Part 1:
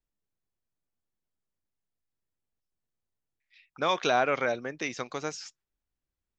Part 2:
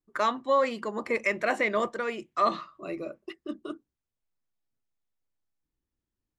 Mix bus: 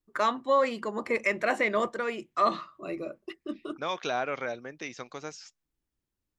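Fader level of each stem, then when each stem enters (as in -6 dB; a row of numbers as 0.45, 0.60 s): -5.5, 0.0 dB; 0.00, 0.00 s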